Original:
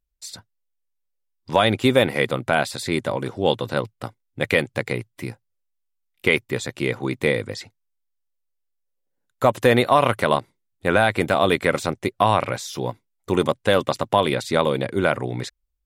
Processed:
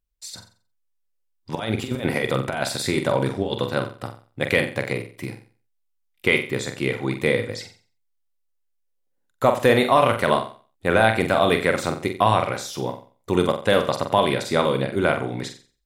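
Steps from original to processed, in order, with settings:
0:01.55–0:03.66: compressor whose output falls as the input rises −22 dBFS, ratio −0.5
flutter between parallel walls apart 7.7 metres, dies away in 0.39 s
level −1 dB

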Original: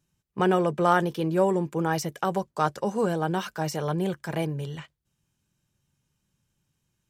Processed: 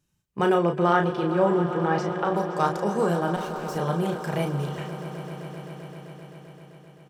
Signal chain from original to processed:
0:00.54–0:02.35: low-pass filter 5,000 Hz → 2,900 Hz 12 dB per octave
0:03.36–0:03.76: tube saturation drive 40 dB, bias 0.65
double-tracking delay 35 ms −5.5 dB
echo that builds up and dies away 130 ms, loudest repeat 5, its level −16 dB

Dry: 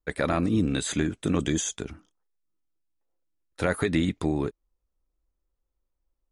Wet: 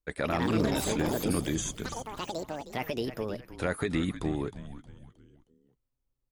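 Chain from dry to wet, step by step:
delay with pitch and tempo change per echo 190 ms, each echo +6 semitones, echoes 3
echo with shifted repeats 313 ms, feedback 41%, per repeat −140 Hz, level −12 dB
level −5 dB

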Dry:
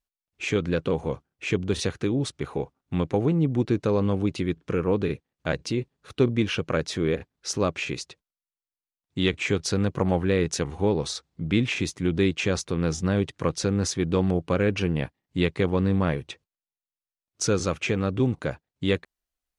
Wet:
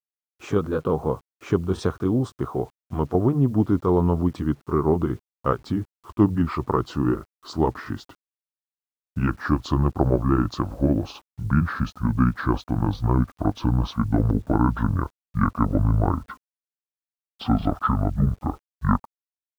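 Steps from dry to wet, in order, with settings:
pitch glide at a constant tempo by −12 semitones starting unshifted
high shelf with overshoot 1,600 Hz −9.5 dB, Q 3
bit reduction 10 bits
level +3.5 dB

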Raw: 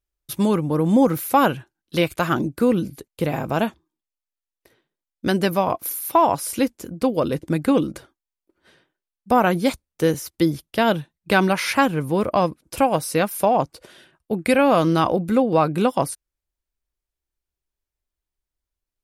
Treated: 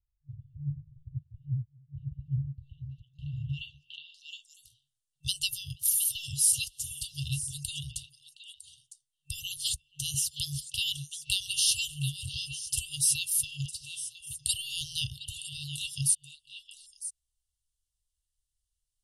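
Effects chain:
echo through a band-pass that steps 239 ms, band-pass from 400 Hz, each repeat 1.4 octaves, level −2.5 dB
brick-wall band-stop 150–2,700 Hz
low-pass filter sweep 110 Hz → 9,400 Hz, 0:01.96–0:04.57
level +1 dB

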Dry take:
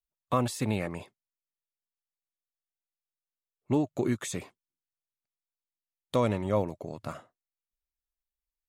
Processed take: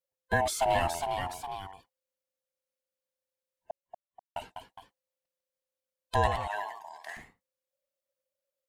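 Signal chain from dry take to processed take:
neighbouring bands swapped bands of 500 Hz
0:00.47–0:00.93: leveller curve on the samples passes 1
0:03.71–0:04.36: silence
0:06.27–0:07.17: high-pass filter 1,100 Hz 12 dB per octave
delay with pitch and tempo change per echo 444 ms, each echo +1 semitone, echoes 2, each echo −6 dB

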